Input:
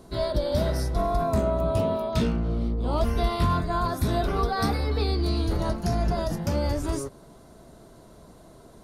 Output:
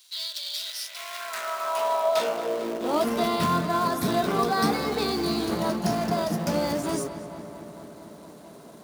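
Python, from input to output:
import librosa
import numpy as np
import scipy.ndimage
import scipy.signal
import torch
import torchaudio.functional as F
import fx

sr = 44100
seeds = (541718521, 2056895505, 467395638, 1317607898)

p1 = fx.quant_companded(x, sr, bits=4)
p2 = x + (p1 * 10.0 ** (-3.5 / 20.0))
p3 = fx.low_shelf(p2, sr, hz=250.0, db=-10.0)
p4 = fx.echo_filtered(p3, sr, ms=225, feedback_pct=76, hz=4000.0, wet_db=-12.0)
p5 = fx.filter_sweep_highpass(p4, sr, from_hz=3500.0, to_hz=180.0, start_s=0.67, end_s=3.36, q=2.0)
y = p5 * 10.0 ** (-1.5 / 20.0)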